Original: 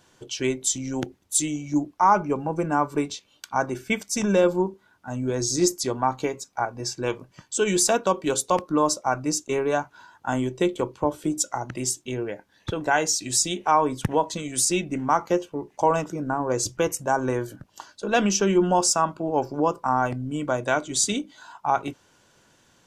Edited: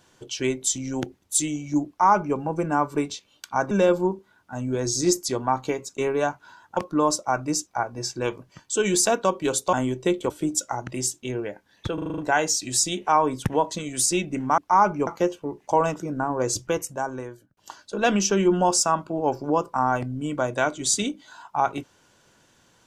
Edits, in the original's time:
1.88–2.37 copy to 15.17
3.71–4.26 cut
6.49–8.55 swap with 9.45–10.28
10.85–11.13 cut
12.77 stutter 0.04 s, 7 plays
16.65–17.67 fade out

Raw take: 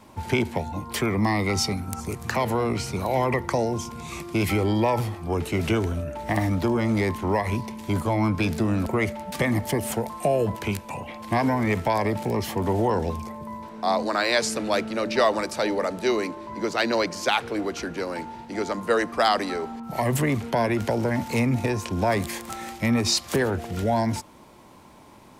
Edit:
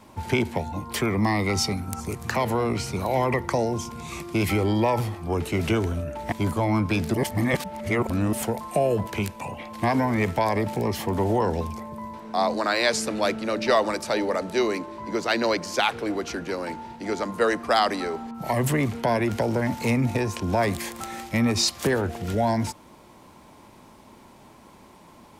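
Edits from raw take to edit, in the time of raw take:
6.32–7.81 cut
8.63–9.82 reverse

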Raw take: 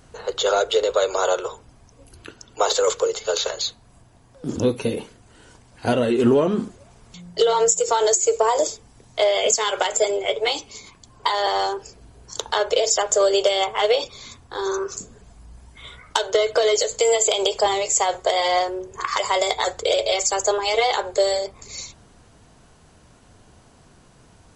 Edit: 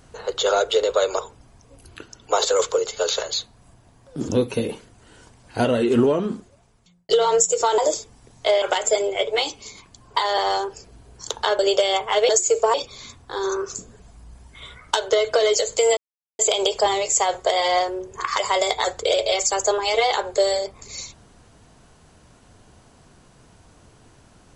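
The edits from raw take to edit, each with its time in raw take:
1.19–1.47 cut
6.18–7.37 fade out
8.06–8.51 move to 13.96
9.35–9.71 cut
12.68–13.26 cut
17.19 insert silence 0.42 s

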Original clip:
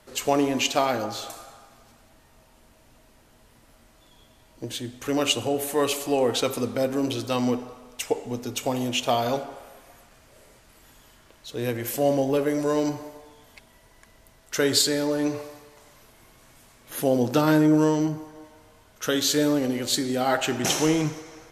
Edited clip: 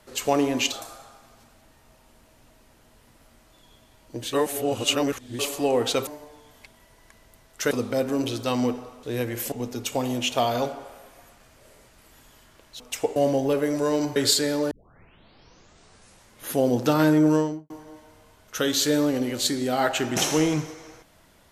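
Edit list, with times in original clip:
0.72–1.2 cut
4.81–5.87 reverse
7.87–8.23 swap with 11.51–12
13–14.64 move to 6.55
15.19 tape start 1.75 s
17.79–18.18 studio fade out

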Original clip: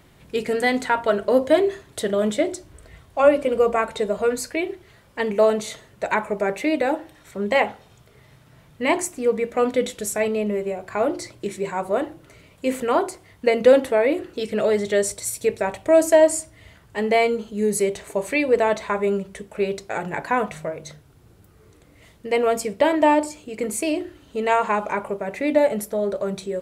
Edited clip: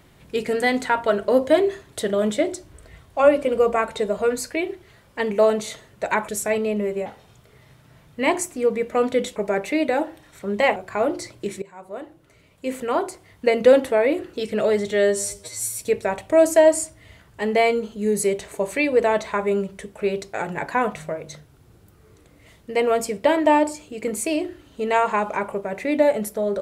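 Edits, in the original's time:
6.28–7.68 swap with 9.98–10.76
11.62–13.46 fade in linear, from -20.5 dB
14.91–15.35 stretch 2×

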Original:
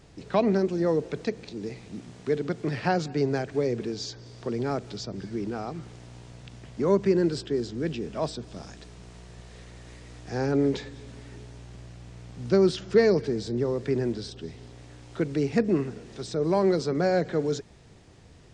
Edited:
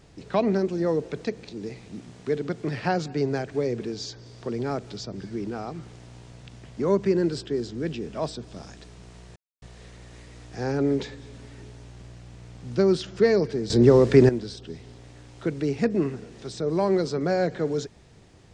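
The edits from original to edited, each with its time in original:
9.36 insert silence 0.26 s
13.44–14.03 gain +11.5 dB

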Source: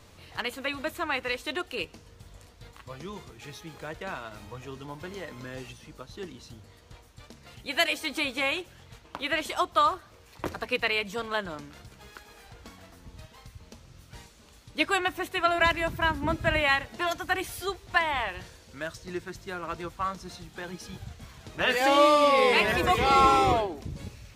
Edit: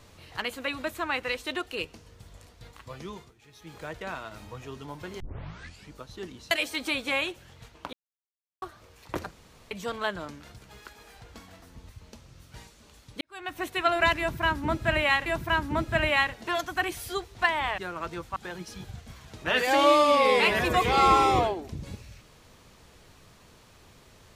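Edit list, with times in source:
3.1–3.76 dip -13 dB, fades 0.24 s
5.2 tape start 0.72 s
6.51–7.81 cut
9.23–9.92 mute
10.61–11.01 room tone
13.19–13.48 cut
14.8–15.21 fade in quadratic
15.78–16.85 loop, 2 plays
18.3–19.45 cut
20.03–20.49 cut

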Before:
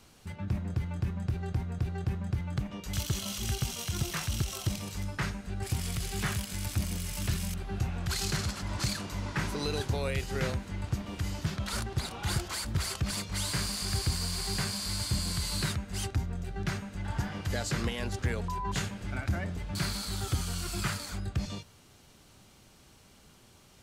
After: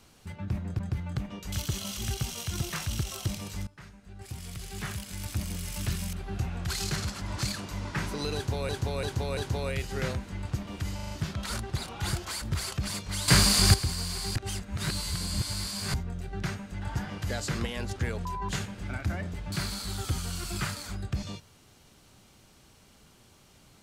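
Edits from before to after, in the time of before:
0.79–2.2 cut
5.08–7.12 fade in linear, from -21 dB
9.76–10.1 loop, 4 plays
11.34 stutter 0.04 s, 5 plays
13.51–13.97 gain +12 dB
14.59–16.17 reverse

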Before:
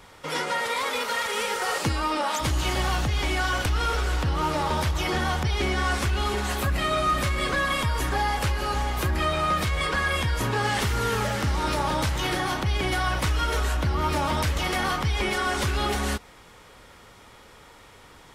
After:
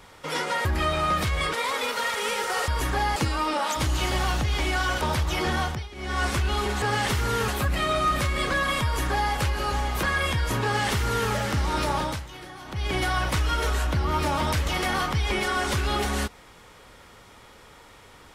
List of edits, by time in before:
3.65–4.69 cut
5.29–5.91 dip -17.5 dB, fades 0.28 s
7.87–8.35 copy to 1.8
9.05–9.93 move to 0.65
10.54–11.2 copy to 6.5
11.86–12.85 dip -15 dB, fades 0.31 s

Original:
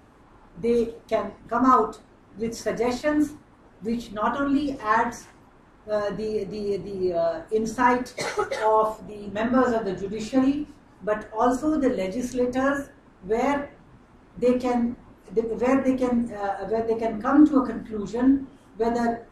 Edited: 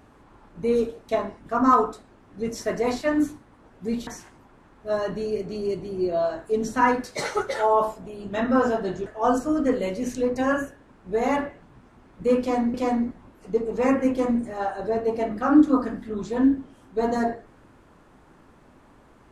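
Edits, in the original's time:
4.07–5.09 cut
10.08–11.23 cut
14.57–14.91 loop, 2 plays

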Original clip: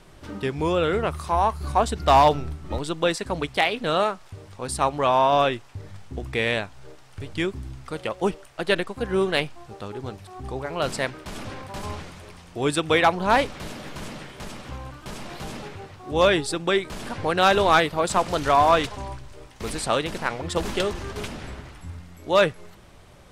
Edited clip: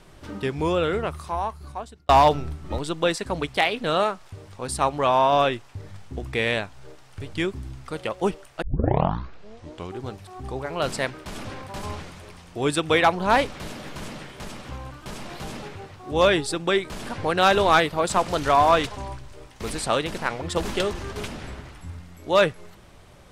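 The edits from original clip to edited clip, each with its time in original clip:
0.7–2.09 fade out
8.62 tape start 1.41 s

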